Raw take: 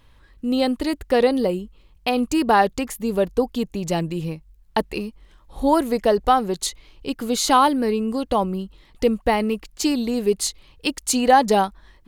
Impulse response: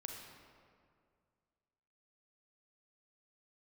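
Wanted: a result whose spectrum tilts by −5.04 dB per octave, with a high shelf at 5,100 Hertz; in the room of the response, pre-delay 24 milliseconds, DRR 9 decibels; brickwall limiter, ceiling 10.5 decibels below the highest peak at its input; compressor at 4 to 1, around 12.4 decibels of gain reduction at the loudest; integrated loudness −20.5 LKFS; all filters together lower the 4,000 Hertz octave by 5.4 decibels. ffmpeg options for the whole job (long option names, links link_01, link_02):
-filter_complex "[0:a]equalizer=frequency=4000:width_type=o:gain=-3.5,highshelf=frequency=5100:gain=-8,acompressor=threshold=-26dB:ratio=4,alimiter=limit=-20.5dB:level=0:latency=1,asplit=2[link_01][link_02];[1:a]atrim=start_sample=2205,adelay=24[link_03];[link_02][link_03]afir=irnorm=-1:irlink=0,volume=-6.5dB[link_04];[link_01][link_04]amix=inputs=2:normalize=0,volume=10.5dB"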